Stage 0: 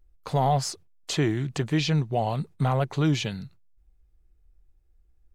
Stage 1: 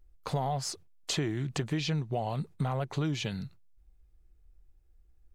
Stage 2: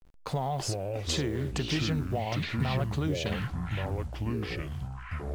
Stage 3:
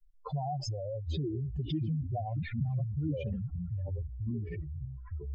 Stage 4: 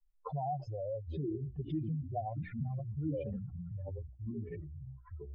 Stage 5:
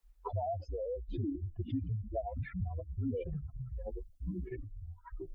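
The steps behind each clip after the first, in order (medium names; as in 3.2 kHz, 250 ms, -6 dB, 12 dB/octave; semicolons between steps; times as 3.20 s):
compression, threshold -28 dBFS, peak gain reduction 9.5 dB
send-on-delta sampling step -53 dBFS; ever faster or slower copies 239 ms, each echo -5 st, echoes 3
spectral contrast enhancement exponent 3.4; trim -2.5 dB
low-pass 1.3 kHz 12 dB/octave; bass shelf 130 Hz -11.5 dB; hum notches 60/120/180/240/300/360 Hz; trim +1 dB
reverb removal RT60 1.1 s; frequency shift -46 Hz; three bands compressed up and down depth 40%; trim +2 dB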